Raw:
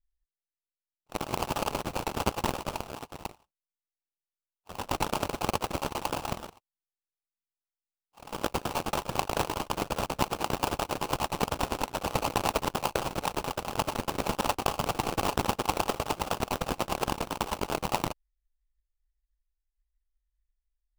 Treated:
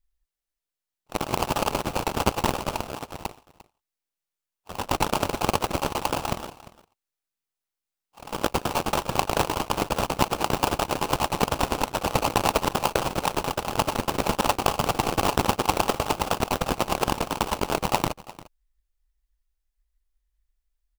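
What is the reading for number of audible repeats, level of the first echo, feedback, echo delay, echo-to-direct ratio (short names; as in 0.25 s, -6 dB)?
1, -19.0 dB, no steady repeat, 0.349 s, -19.0 dB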